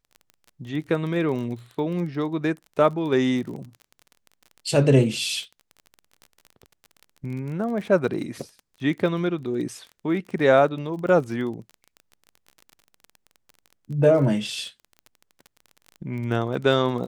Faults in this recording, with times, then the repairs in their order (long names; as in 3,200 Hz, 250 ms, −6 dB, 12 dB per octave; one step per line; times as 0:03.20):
surface crackle 28 per second −33 dBFS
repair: click removal